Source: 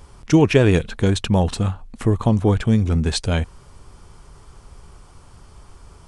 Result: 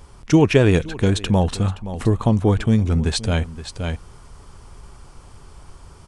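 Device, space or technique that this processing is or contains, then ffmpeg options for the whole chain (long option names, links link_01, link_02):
ducked delay: -filter_complex "[0:a]asplit=3[link_01][link_02][link_03];[link_02]adelay=521,volume=-3dB[link_04];[link_03]apad=whole_len=290988[link_05];[link_04][link_05]sidechaincompress=threshold=-32dB:ratio=16:attack=20:release=473[link_06];[link_01][link_06]amix=inputs=2:normalize=0"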